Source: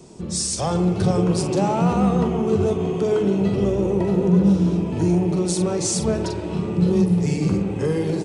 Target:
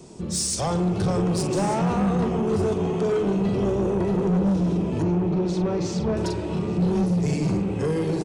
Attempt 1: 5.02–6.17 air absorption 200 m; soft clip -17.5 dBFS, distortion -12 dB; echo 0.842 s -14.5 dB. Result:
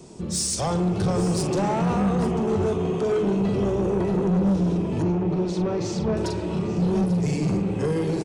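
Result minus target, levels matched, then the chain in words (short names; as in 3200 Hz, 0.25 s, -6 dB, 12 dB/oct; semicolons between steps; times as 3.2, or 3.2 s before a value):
echo 0.35 s early
5.02–6.17 air absorption 200 m; soft clip -17.5 dBFS, distortion -12 dB; echo 1.192 s -14.5 dB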